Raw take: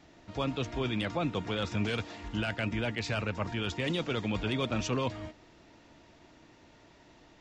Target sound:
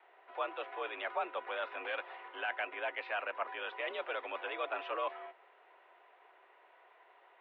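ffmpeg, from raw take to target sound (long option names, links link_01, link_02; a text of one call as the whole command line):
ffmpeg -i in.wav -filter_complex "[0:a]acrossover=split=510 2300:gain=0.178 1 0.178[link_01][link_02][link_03];[link_01][link_02][link_03]amix=inputs=3:normalize=0,highpass=frequency=330:width_type=q:width=0.5412,highpass=frequency=330:width_type=q:width=1.307,lowpass=frequency=3400:width_type=q:width=0.5176,lowpass=frequency=3400:width_type=q:width=0.7071,lowpass=frequency=3400:width_type=q:width=1.932,afreqshift=66,volume=1dB" out.wav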